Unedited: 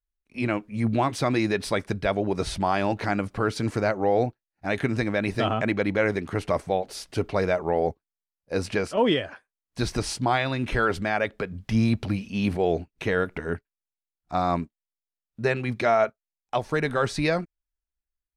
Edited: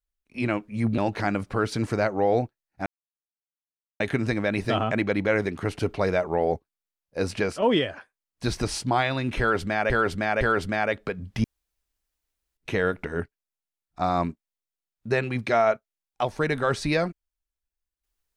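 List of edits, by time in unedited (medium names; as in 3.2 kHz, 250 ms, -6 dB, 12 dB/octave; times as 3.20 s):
0.98–2.82 s: delete
4.70 s: insert silence 1.14 s
6.49–7.14 s: delete
10.74–11.25 s: loop, 3 plays
11.77–12.90 s: room tone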